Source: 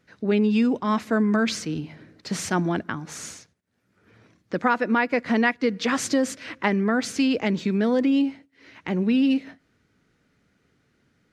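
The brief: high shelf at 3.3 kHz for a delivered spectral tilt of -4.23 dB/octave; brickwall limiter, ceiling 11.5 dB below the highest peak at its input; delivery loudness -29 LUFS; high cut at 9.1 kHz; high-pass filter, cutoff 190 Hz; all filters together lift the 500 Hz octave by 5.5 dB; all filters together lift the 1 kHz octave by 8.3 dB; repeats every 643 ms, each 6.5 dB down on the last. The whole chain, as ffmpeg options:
-af "highpass=190,lowpass=9100,equalizer=f=500:t=o:g=4.5,equalizer=f=1000:t=o:g=8.5,highshelf=f=3300:g=5,alimiter=limit=0.224:level=0:latency=1,aecho=1:1:643|1286|1929|2572|3215|3858:0.473|0.222|0.105|0.0491|0.0231|0.0109,volume=0.531"

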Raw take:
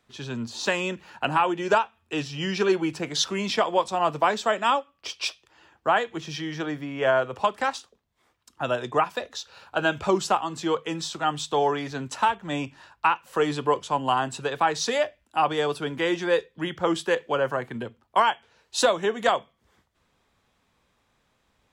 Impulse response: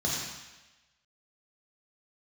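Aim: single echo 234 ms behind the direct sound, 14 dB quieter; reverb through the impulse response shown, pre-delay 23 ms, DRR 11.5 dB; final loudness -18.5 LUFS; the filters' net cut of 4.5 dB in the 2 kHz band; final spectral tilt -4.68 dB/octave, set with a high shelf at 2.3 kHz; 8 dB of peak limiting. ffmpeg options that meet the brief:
-filter_complex "[0:a]equalizer=f=2000:t=o:g=-4.5,highshelf=f=2300:g=-3.5,alimiter=limit=0.119:level=0:latency=1,aecho=1:1:234:0.2,asplit=2[s0][s1];[1:a]atrim=start_sample=2205,adelay=23[s2];[s1][s2]afir=irnorm=-1:irlink=0,volume=0.0944[s3];[s0][s3]amix=inputs=2:normalize=0,volume=3.76"

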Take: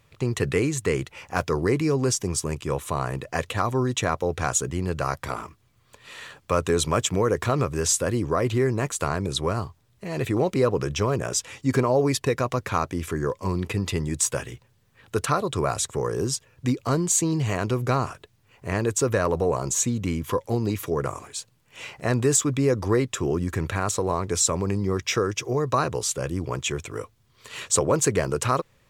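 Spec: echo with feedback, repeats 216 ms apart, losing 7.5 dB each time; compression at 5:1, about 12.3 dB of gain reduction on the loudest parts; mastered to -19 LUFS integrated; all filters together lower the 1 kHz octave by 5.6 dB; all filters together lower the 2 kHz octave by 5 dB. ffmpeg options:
-af "equalizer=f=1000:t=o:g=-6,equalizer=f=2000:t=o:g=-4.5,acompressor=threshold=0.0251:ratio=5,aecho=1:1:216|432|648|864|1080:0.422|0.177|0.0744|0.0312|0.0131,volume=6.31"

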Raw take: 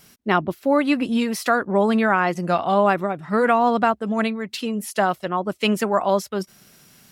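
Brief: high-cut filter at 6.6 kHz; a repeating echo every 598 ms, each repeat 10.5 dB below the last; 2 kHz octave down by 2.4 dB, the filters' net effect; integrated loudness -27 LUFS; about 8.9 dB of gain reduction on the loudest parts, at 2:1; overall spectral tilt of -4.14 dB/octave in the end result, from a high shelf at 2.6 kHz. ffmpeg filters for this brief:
-af "lowpass=6600,equalizer=f=2000:t=o:g=-5,highshelf=f=2600:g=3.5,acompressor=threshold=0.0316:ratio=2,aecho=1:1:598|1196|1794:0.299|0.0896|0.0269,volume=1.19"

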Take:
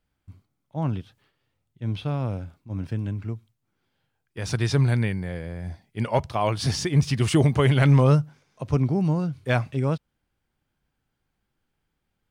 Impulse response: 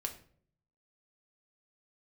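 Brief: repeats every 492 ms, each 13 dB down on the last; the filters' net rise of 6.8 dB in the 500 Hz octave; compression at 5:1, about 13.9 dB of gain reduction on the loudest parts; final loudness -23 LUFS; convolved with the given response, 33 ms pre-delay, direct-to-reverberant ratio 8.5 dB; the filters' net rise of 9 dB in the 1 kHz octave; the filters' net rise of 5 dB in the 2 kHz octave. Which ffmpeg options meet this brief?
-filter_complex "[0:a]equalizer=f=500:t=o:g=6,equalizer=f=1000:t=o:g=8.5,equalizer=f=2000:t=o:g=3,acompressor=threshold=0.0501:ratio=5,aecho=1:1:492|984|1476:0.224|0.0493|0.0108,asplit=2[s0][s1];[1:a]atrim=start_sample=2205,adelay=33[s2];[s1][s2]afir=irnorm=-1:irlink=0,volume=0.376[s3];[s0][s3]amix=inputs=2:normalize=0,volume=2.37"

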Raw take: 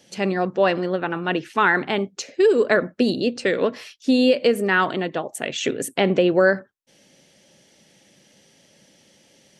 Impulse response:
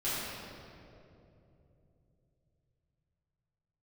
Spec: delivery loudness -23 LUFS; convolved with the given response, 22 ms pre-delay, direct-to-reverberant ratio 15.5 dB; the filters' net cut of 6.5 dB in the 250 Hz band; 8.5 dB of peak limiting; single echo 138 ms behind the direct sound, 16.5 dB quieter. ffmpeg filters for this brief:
-filter_complex "[0:a]equalizer=f=250:t=o:g=-9,alimiter=limit=0.2:level=0:latency=1,aecho=1:1:138:0.15,asplit=2[s0][s1];[1:a]atrim=start_sample=2205,adelay=22[s2];[s1][s2]afir=irnorm=-1:irlink=0,volume=0.0708[s3];[s0][s3]amix=inputs=2:normalize=0,volume=1.33"

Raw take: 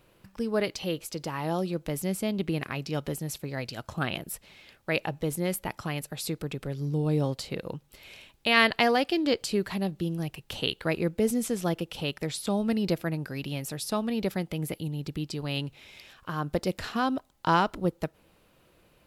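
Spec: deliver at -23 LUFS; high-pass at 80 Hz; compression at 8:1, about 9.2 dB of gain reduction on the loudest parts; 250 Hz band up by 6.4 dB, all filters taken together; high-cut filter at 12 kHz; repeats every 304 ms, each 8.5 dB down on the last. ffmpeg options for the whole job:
-af "highpass=80,lowpass=12000,equalizer=f=250:t=o:g=8.5,acompressor=threshold=0.0562:ratio=8,aecho=1:1:304|608|912|1216:0.376|0.143|0.0543|0.0206,volume=2.51"

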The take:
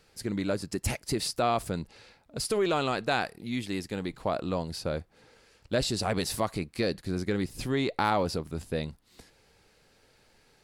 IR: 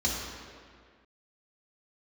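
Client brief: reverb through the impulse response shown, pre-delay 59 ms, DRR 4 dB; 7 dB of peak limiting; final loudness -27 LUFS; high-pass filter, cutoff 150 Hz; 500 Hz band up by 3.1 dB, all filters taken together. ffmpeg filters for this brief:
-filter_complex "[0:a]highpass=150,equalizer=f=500:t=o:g=4,alimiter=limit=0.119:level=0:latency=1,asplit=2[s0][s1];[1:a]atrim=start_sample=2205,adelay=59[s2];[s1][s2]afir=irnorm=-1:irlink=0,volume=0.224[s3];[s0][s3]amix=inputs=2:normalize=0,volume=1.33"

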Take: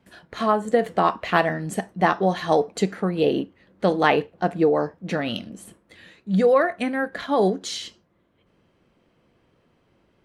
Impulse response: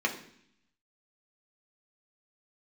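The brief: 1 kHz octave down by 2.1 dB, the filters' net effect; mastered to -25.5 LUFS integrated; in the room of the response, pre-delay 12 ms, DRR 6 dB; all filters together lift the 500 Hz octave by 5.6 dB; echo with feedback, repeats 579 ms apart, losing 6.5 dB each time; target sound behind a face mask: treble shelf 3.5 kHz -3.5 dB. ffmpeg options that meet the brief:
-filter_complex "[0:a]equalizer=f=500:t=o:g=8,equalizer=f=1000:t=o:g=-6.5,aecho=1:1:579|1158|1737|2316|2895|3474:0.473|0.222|0.105|0.0491|0.0231|0.0109,asplit=2[s0][s1];[1:a]atrim=start_sample=2205,adelay=12[s2];[s1][s2]afir=irnorm=-1:irlink=0,volume=0.168[s3];[s0][s3]amix=inputs=2:normalize=0,highshelf=f=3500:g=-3.5,volume=0.422"

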